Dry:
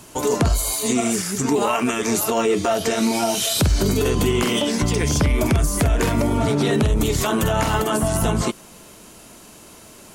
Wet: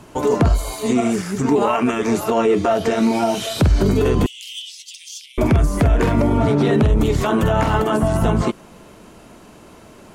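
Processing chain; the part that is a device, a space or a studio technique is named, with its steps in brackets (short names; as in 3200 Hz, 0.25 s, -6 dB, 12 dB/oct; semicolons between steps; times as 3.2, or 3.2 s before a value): through cloth (high shelf 3700 Hz -16 dB); 4.26–5.38 steep high-pass 2900 Hz 48 dB/oct; gain +3.5 dB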